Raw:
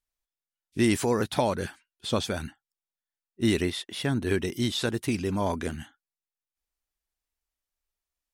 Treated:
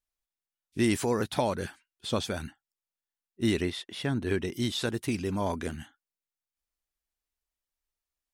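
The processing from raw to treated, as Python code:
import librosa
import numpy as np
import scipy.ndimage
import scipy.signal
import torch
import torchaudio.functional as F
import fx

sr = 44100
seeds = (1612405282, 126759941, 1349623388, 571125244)

y = fx.high_shelf(x, sr, hz=fx.line((3.5, 9800.0), (4.53, 6400.0)), db=-8.0, at=(3.5, 4.53), fade=0.02)
y = y * 10.0 ** (-2.5 / 20.0)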